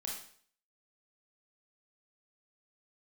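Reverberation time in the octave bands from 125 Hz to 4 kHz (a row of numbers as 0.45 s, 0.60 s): 0.55 s, 0.50 s, 0.55 s, 0.55 s, 0.50 s, 0.50 s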